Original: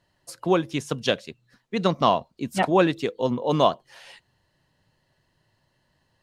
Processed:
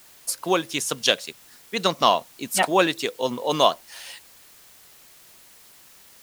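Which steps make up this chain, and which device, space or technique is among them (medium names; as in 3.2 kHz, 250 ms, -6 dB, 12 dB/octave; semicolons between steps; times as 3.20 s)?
turntable without a phono preamp (RIAA curve recording; white noise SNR 25 dB); trim +2 dB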